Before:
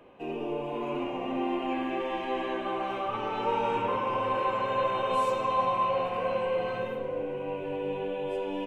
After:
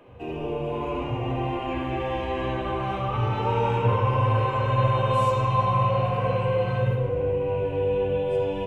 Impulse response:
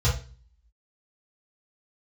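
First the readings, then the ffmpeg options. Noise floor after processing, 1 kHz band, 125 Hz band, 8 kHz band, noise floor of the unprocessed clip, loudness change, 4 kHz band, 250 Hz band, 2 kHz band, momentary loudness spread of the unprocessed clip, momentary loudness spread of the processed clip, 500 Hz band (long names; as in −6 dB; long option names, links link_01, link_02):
−31 dBFS, +3.0 dB, +21.5 dB, can't be measured, −36 dBFS, +5.5 dB, +2.5 dB, +3.0 dB, +2.5 dB, 6 LU, 7 LU, +4.5 dB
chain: -filter_complex "[0:a]asplit=2[link_01][link_02];[link_02]lowshelf=frequency=210:gain=7.5[link_03];[1:a]atrim=start_sample=2205,adelay=69[link_04];[link_03][link_04]afir=irnorm=-1:irlink=0,volume=-17.5dB[link_05];[link_01][link_05]amix=inputs=2:normalize=0,volume=2dB"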